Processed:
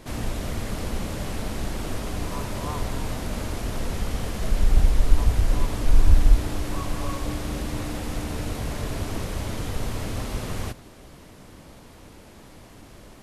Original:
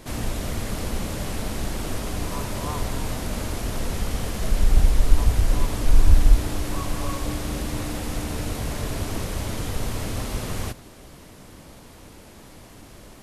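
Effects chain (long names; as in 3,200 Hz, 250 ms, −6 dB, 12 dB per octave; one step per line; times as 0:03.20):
high-shelf EQ 5,600 Hz −4.5 dB
level −1 dB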